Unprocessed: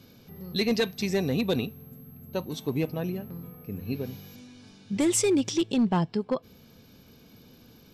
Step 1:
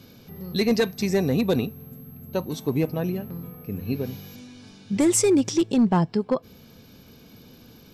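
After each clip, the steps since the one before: dynamic EQ 3200 Hz, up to -7 dB, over -49 dBFS, Q 1.5; gain +4.5 dB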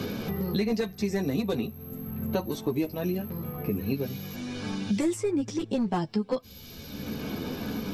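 chorus voices 6, 0.33 Hz, delay 12 ms, depth 2.8 ms; three-band squash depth 100%; gain -2.5 dB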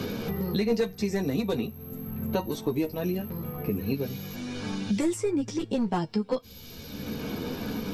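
resonator 470 Hz, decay 0.18 s, harmonics all, mix 60%; gain +7.5 dB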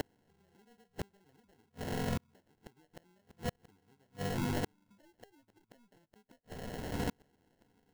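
bin magnitudes rounded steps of 30 dB; sample-rate reducer 1200 Hz, jitter 0%; flipped gate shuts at -27 dBFS, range -41 dB; gain +2.5 dB

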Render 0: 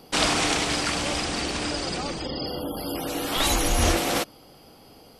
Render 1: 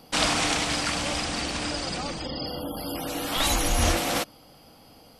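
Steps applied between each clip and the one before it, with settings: bell 390 Hz -9 dB 0.29 oct; gain -1 dB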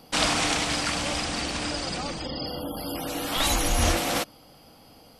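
nothing audible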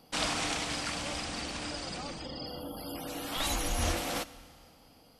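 Schroeder reverb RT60 2.1 s, combs from 25 ms, DRR 16.5 dB; gain -8 dB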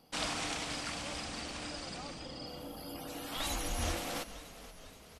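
frequency-shifting echo 0.478 s, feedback 62%, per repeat -35 Hz, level -15 dB; gain -4.5 dB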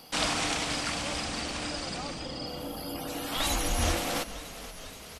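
mismatched tape noise reduction encoder only; gain +7.5 dB

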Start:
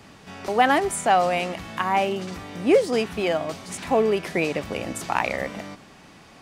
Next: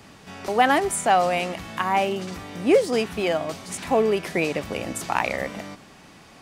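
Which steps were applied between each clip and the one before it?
high shelf 7800 Hz +4 dB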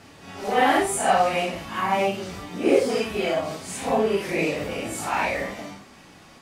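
phase scrambler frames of 0.2 s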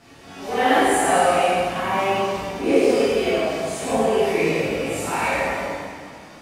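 plate-style reverb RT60 2.2 s, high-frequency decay 0.75×, DRR -7.5 dB; gain -5 dB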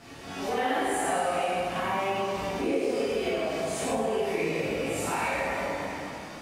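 compressor 3:1, threshold -30 dBFS, peak gain reduction 13.5 dB; gain +1.5 dB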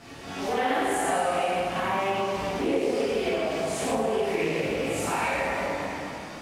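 Doppler distortion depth 0.18 ms; gain +2 dB

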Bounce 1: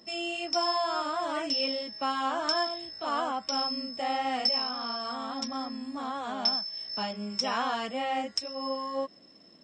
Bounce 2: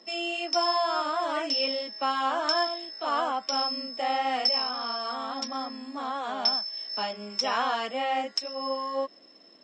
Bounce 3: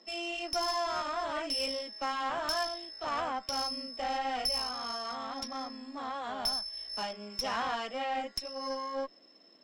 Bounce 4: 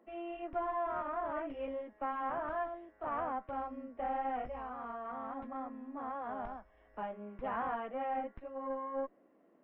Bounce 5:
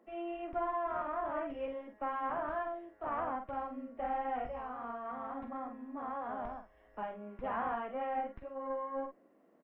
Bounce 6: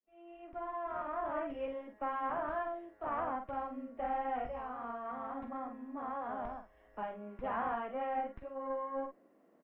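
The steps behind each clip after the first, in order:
three-band isolator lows -20 dB, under 260 Hz, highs -21 dB, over 7900 Hz; gain +3 dB
tube stage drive 22 dB, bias 0.5; gain -3 dB
Gaussian blur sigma 5 samples; gain -1 dB
doubler 47 ms -7.5 dB
opening faded in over 1.32 s

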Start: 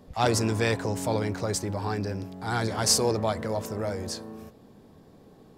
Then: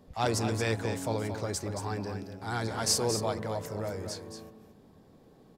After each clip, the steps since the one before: echo 0.225 s -8 dB; gain -5 dB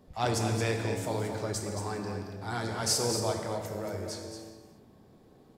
non-linear reverb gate 0.44 s falling, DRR 4 dB; gain -1.5 dB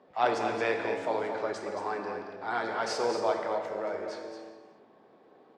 BPF 450–2400 Hz; gain +5.5 dB

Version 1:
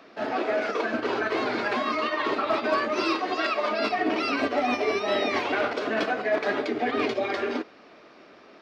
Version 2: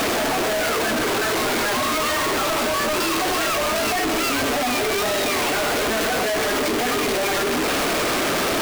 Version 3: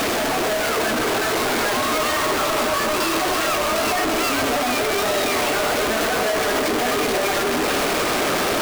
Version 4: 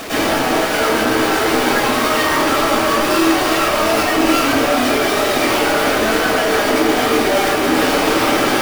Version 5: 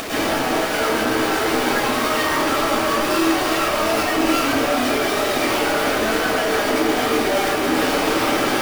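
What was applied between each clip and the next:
infinite clipping; gain +5.5 dB
band-limited delay 0.298 s, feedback 82%, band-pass 780 Hz, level -8.5 dB
reverb RT60 0.60 s, pre-delay 97 ms, DRR -12.5 dB; gain -7.5 dB
upward compressor, threshold -23 dBFS; gain -4 dB

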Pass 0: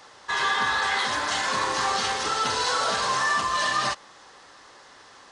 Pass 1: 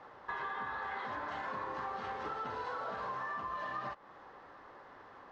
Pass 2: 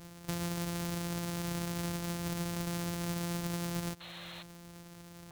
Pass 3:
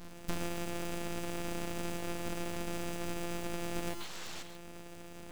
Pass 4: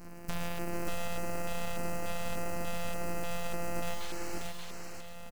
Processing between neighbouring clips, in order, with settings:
LPF 1400 Hz 12 dB/oct; compressor 6:1, threshold -36 dBFS, peak gain reduction 12.5 dB; gain -1.5 dB
sample sorter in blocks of 256 samples; painted sound noise, 4–4.43, 480–4300 Hz -50 dBFS; tone controls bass +6 dB, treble +8 dB
non-linear reverb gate 0.16 s rising, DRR 9.5 dB; full-wave rectifier; vocal rider within 3 dB 0.5 s; gain +2 dB
on a send: tapped delay 58/86/445/582 ms -8.5/-17/-8.5/-3 dB; on the sum: LFO notch square 1.7 Hz 320–3500 Hz

